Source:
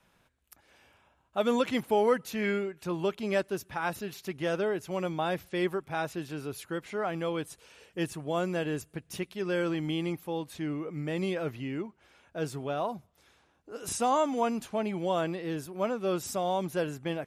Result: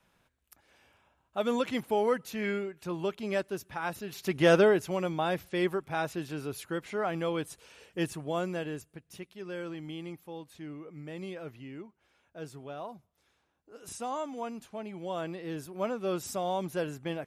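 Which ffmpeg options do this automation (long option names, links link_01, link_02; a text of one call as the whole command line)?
ffmpeg -i in.wav -af "volume=16.5dB,afade=type=in:start_time=4.07:duration=0.45:silence=0.251189,afade=type=out:start_time=4.52:duration=0.46:silence=0.354813,afade=type=out:start_time=8.04:duration=0.96:silence=0.334965,afade=type=in:start_time=14.91:duration=0.83:silence=0.446684" out.wav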